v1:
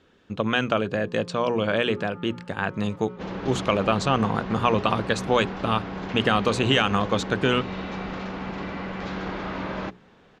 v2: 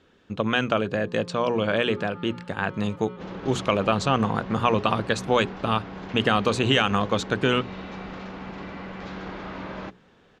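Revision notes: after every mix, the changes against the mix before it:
first sound: remove air absorption 490 m; second sound -4.5 dB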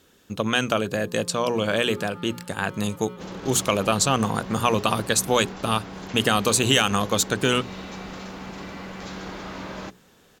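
master: remove LPF 3000 Hz 12 dB/oct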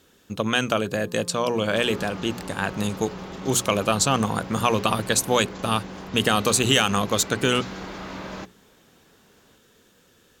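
second sound: entry -1.45 s

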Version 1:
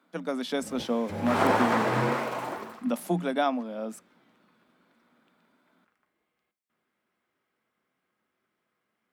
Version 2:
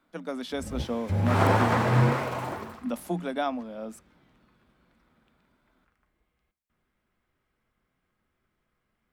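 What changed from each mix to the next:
speech -3.0 dB; background: remove HPF 230 Hz 12 dB/oct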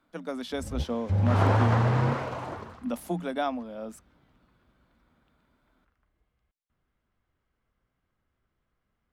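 background: add air absorption 53 m; reverb: off

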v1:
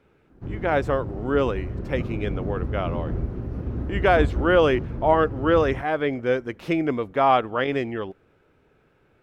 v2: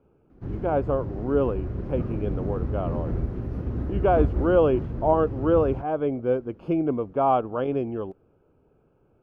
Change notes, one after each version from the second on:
speech: add running mean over 23 samples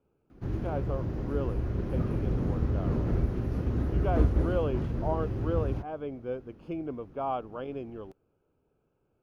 speech -11.5 dB; master: add high shelf 2700 Hz +10.5 dB

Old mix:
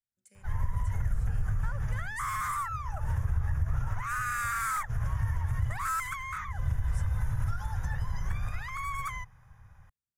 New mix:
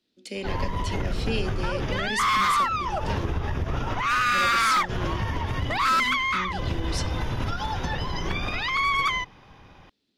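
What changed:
speech +11.5 dB; master: remove EQ curve 120 Hz 0 dB, 320 Hz -30 dB, 480 Hz -19 dB, 1700 Hz -7 dB, 2800 Hz -23 dB, 4400 Hz -24 dB, 7800 Hz +2 dB

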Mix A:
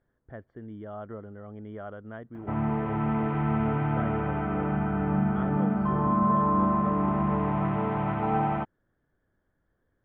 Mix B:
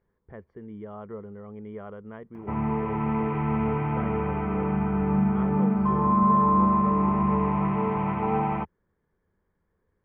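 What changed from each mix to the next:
master: add ripple EQ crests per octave 0.82, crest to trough 9 dB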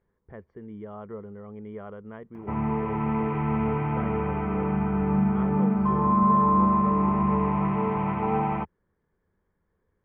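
none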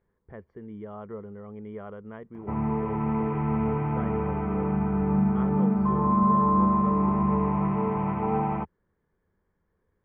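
background: add high shelf 2000 Hz -9.5 dB

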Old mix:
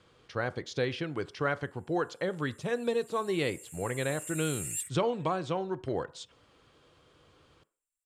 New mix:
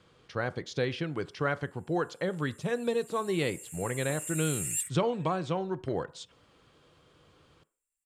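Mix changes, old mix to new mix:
background +3.5 dB; master: add bell 170 Hz +4 dB 0.64 oct

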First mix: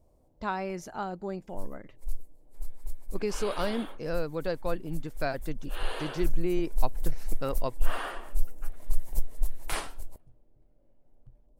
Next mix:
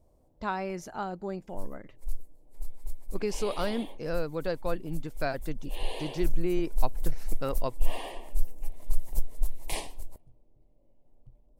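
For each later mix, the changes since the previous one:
second sound: add Butterworth band-stop 1400 Hz, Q 1.3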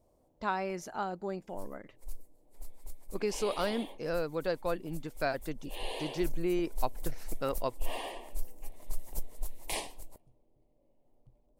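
master: add low shelf 140 Hz -10 dB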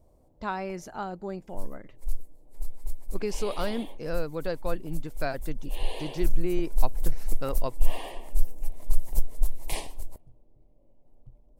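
first sound +3.5 dB; master: add low shelf 140 Hz +10 dB

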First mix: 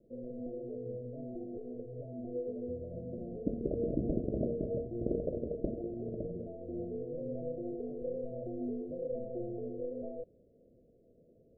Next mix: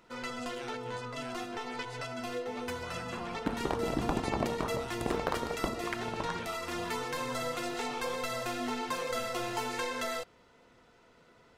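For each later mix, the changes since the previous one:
master: remove steep low-pass 630 Hz 96 dB/oct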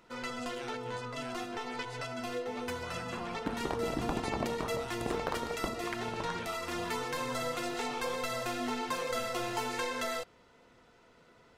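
second sound -3.0 dB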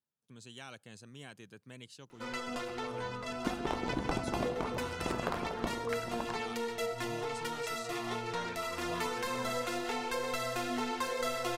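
first sound: entry +2.10 s

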